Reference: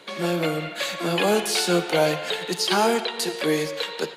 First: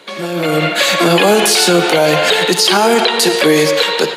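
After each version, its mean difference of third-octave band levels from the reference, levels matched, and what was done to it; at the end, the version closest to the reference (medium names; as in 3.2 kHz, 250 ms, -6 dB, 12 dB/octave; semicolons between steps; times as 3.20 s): 3.5 dB: peak limiter -20.5 dBFS, peak gain reduction 11 dB; level rider gain up to 12 dB; bass shelf 79 Hz -11.5 dB; trim +6.5 dB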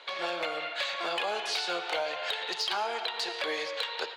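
7.5 dB: Chebyshev band-pass 720–4200 Hz, order 2; compression 6:1, threshold -28 dBFS, peak gain reduction 10 dB; hard clipper -23 dBFS, distortion -25 dB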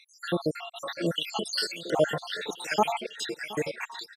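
12.0 dB: random holes in the spectrogram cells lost 76%; treble shelf 11 kHz -11.5 dB; feedback delay 720 ms, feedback 20%, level -19 dB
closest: first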